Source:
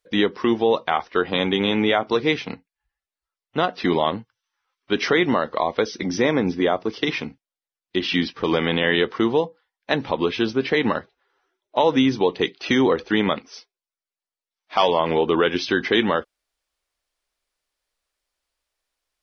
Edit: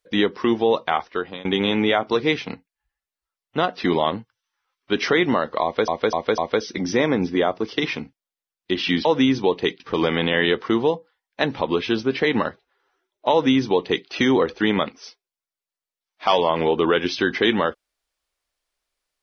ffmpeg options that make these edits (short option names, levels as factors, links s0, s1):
-filter_complex "[0:a]asplit=7[s0][s1][s2][s3][s4][s5][s6];[s0]atrim=end=1.45,asetpts=PTS-STARTPTS,afade=t=out:st=0.96:d=0.49:silence=0.0749894[s7];[s1]atrim=start=1.45:end=5.882,asetpts=PTS-STARTPTS,afade=t=in:d=0.004:c=hsin:silence=0.0749894[s8];[s2]atrim=start=5.628:end=5.882[s9];[s3]atrim=start=5.628:end=5.882[s10];[s4]atrim=start=5.628:end=8.302[s11];[s5]atrim=start=11.818:end=12.572[s12];[s6]atrim=start=8.298[s13];[s7][s8]concat=n=2:v=0:a=1[s14];[s14][s9]acrossfade=d=0.004:c1=hsin:c2=hsin[s15];[s15][s10]acrossfade=d=0.004:c1=hsin:c2=hsin[s16];[s16][s11]acrossfade=d=0.004:c1=hsin:c2=hsin[s17];[s17][s12]acrossfade=d=0.004:c1=hsin:c2=hsin[s18];[s18][s13]acrossfade=d=0.004:c1=hsin:c2=hsin"